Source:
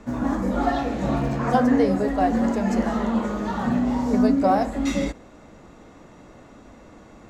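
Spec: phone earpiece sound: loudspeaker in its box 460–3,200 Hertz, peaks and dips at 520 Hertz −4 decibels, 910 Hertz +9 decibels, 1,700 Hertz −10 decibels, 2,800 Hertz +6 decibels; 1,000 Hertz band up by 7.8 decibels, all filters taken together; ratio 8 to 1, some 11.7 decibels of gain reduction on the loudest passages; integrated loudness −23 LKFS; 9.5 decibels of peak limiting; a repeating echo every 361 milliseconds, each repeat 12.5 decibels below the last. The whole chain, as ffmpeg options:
ffmpeg -i in.wav -af "equalizer=frequency=1000:width_type=o:gain=6.5,acompressor=threshold=-24dB:ratio=8,alimiter=level_in=0.5dB:limit=-24dB:level=0:latency=1,volume=-0.5dB,highpass=460,equalizer=frequency=520:width_type=q:width=4:gain=-4,equalizer=frequency=910:width_type=q:width=4:gain=9,equalizer=frequency=1700:width_type=q:width=4:gain=-10,equalizer=frequency=2800:width_type=q:width=4:gain=6,lowpass=frequency=3200:width=0.5412,lowpass=frequency=3200:width=1.3066,aecho=1:1:361|722|1083:0.237|0.0569|0.0137,volume=10.5dB" out.wav

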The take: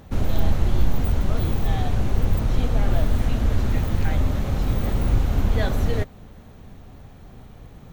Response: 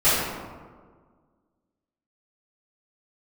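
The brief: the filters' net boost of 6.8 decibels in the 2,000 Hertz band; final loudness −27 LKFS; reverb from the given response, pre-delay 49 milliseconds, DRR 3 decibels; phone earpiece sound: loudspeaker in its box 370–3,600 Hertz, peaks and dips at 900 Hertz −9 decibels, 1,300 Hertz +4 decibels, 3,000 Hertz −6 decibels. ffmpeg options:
-filter_complex "[0:a]equalizer=frequency=2000:width_type=o:gain=8.5,asplit=2[link_01][link_02];[1:a]atrim=start_sample=2205,adelay=49[link_03];[link_02][link_03]afir=irnorm=-1:irlink=0,volume=-22.5dB[link_04];[link_01][link_04]amix=inputs=2:normalize=0,highpass=370,equalizer=frequency=900:width_type=q:width=4:gain=-9,equalizer=frequency=1300:width_type=q:width=4:gain=4,equalizer=frequency=3000:width_type=q:width=4:gain=-6,lowpass=frequency=3600:width=0.5412,lowpass=frequency=3600:width=1.3066,volume=3.5dB"

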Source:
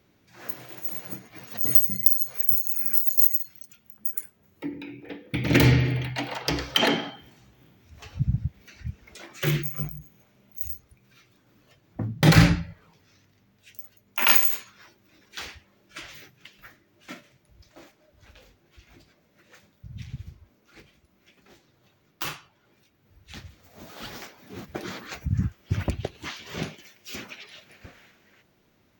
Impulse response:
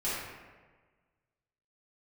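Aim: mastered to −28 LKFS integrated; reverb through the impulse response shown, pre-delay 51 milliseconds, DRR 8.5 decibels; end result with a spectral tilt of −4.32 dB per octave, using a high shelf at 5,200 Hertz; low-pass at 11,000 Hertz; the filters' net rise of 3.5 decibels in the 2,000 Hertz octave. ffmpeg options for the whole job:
-filter_complex "[0:a]lowpass=11000,equalizer=frequency=2000:width_type=o:gain=5,highshelf=frequency=5200:gain=-5.5,asplit=2[link_01][link_02];[1:a]atrim=start_sample=2205,adelay=51[link_03];[link_02][link_03]afir=irnorm=-1:irlink=0,volume=-16dB[link_04];[link_01][link_04]amix=inputs=2:normalize=0,volume=-2dB"

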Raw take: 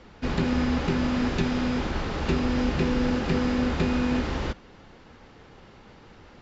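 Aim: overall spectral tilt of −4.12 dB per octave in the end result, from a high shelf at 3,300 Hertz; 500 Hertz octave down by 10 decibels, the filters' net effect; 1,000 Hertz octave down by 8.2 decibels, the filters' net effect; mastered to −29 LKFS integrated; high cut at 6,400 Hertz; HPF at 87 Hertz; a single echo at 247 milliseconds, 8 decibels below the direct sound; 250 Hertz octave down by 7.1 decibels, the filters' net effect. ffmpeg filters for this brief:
ffmpeg -i in.wav -af "highpass=87,lowpass=6400,equalizer=frequency=250:width_type=o:gain=-5.5,equalizer=frequency=500:width_type=o:gain=-9,equalizer=frequency=1000:width_type=o:gain=-8.5,highshelf=frequency=3300:gain=5,aecho=1:1:247:0.398,volume=2.5dB" out.wav

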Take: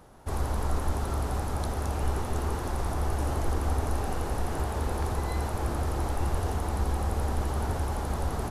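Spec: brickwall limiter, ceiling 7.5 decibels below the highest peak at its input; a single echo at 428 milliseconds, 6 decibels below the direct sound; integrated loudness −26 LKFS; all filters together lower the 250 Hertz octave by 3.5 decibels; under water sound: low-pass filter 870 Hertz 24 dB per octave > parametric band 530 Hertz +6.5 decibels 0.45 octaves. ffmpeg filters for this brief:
ffmpeg -i in.wav -af "equalizer=frequency=250:width_type=o:gain=-5.5,alimiter=limit=-23dB:level=0:latency=1,lowpass=frequency=870:width=0.5412,lowpass=frequency=870:width=1.3066,equalizer=frequency=530:width_type=o:width=0.45:gain=6.5,aecho=1:1:428:0.501,volume=6.5dB" out.wav

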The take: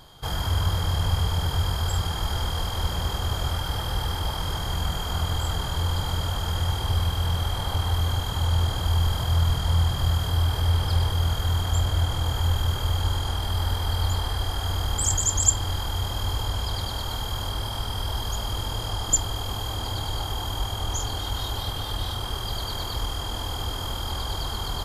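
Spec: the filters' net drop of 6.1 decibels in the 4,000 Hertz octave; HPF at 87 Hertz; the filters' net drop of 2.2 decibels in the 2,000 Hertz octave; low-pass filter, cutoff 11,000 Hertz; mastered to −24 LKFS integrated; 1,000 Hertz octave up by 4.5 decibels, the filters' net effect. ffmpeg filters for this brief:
ffmpeg -i in.wav -af "highpass=87,lowpass=11000,equalizer=frequency=1000:width_type=o:gain=7,equalizer=frequency=2000:width_type=o:gain=-5.5,equalizer=frequency=4000:width_type=o:gain=-6.5,volume=4.5dB" out.wav

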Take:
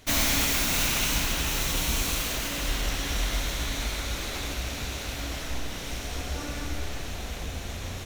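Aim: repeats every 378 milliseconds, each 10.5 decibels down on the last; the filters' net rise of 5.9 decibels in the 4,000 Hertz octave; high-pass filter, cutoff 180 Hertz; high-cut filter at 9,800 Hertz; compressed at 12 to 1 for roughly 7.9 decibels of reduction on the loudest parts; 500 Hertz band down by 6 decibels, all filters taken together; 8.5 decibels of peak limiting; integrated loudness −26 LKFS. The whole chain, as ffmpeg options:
ffmpeg -i in.wav -af "highpass=180,lowpass=9800,equalizer=frequency=500:width_type=o:gain=-8,equalizer=frequency=4000:width_type=o:gain=7.5,acompressor=threshold=-28dB:ratio=12,alimiter=level_in=2.5dB:limit=-24dB:level=0:latency=1,volume=-2.5dB,aecho=1:1:378|756|1134:0.299|0.0896|0.0269,volume=7.5dB" out.wav

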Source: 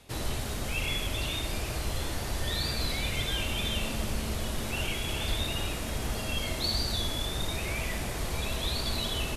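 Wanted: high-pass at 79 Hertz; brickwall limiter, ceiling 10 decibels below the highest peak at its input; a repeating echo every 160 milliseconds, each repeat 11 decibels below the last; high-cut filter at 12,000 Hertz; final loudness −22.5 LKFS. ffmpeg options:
ffmpeg -i in.wav -af "highpass=79,lowpass=12000,alimiter=level_in=4dB:limit=-24dB:level=0:latency=1,volume=-4dB,aecho=1:1:160|320|480:0.282|0.0789|0.0221,volume=13dB" out.wav

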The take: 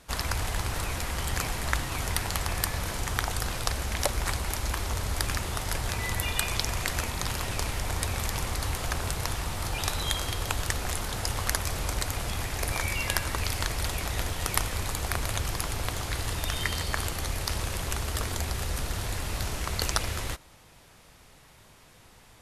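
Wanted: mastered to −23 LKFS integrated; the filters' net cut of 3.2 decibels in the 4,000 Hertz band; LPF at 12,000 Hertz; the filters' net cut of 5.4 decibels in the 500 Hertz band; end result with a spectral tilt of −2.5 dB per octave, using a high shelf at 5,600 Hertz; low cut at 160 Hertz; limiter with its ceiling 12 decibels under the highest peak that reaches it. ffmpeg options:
ffmpeg -i in.wav -af "highpass=160,lowpass=12000,equalizer=frequency=500:width_type=o:gain=-7,equalizer=frequency=4000:width_type=o:gain=-5.5,highshelf=frequency=5600:gain=3.5,volume=11dB,alimiter=limit=-5.5dB:level=0:latency=1" out.wav

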